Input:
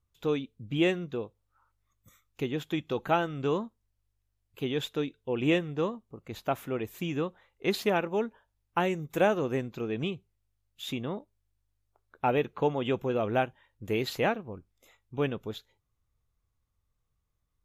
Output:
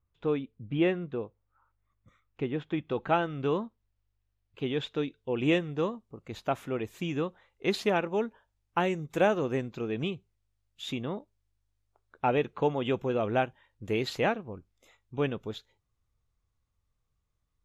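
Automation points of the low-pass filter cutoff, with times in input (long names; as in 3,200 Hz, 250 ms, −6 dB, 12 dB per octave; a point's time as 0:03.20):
0:02.79 2,300 Hz
0:03.19 4,100 Hz
0:04.86 4,100 Hz
0:05.37 8,700 Hz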